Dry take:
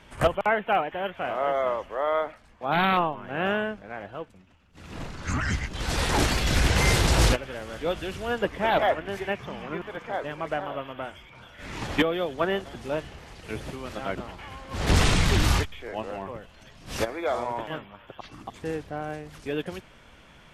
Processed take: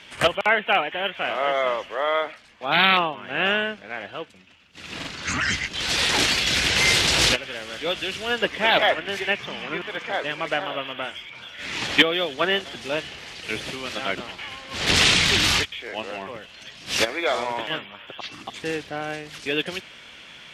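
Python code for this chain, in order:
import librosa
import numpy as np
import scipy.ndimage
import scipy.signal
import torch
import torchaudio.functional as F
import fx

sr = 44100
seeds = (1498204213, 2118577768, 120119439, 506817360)

y = fx.weighting(x, sr, curve='D')
y = fx.rider(y, sr, range_db=3, speed_s=2.0)
y = fx.buffer_glitch(y, sr, at_s=(4.98,), block=2048, repeats=1)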